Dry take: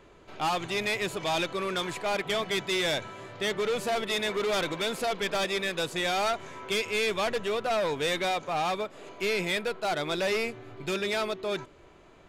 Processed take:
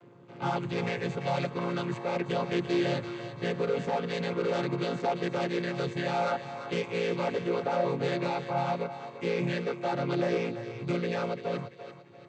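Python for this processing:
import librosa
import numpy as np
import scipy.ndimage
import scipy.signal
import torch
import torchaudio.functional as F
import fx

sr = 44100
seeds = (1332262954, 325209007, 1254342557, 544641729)

y = fx.chord_vocoder(x, sr, chord='minor triad', root=46)
y = fx.echo_thinned(y, sr, ms=341, feedback_pct=40, hz=420.0, wet_db=-10.0)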